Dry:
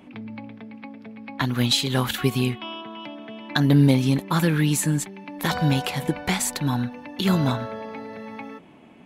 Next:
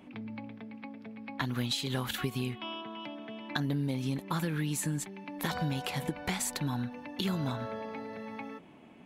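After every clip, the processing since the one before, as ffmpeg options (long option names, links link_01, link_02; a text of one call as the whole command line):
ffmpeg -i in.wav -af "acompressor=threshold=-24dB:ratio=6,volume=-5dB" out.wav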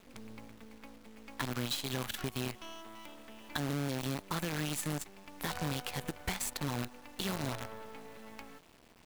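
ffmpeg -i in.wav -af "asubboost=boost=4.5:cutoff=74,acrusher=bits=6:dc=4:mix=0:aa=0.000001,volume=-3.5dB" out.wav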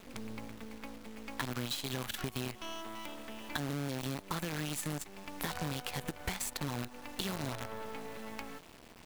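ffmpeg -i in.wav -af "acompressor=threshold=-41dB:ratio=3,volume=6dB" out.wav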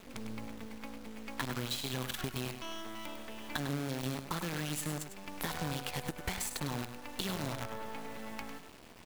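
ffmpeg -i in.wav -af "aecho=1:1:101:0.355" out.wav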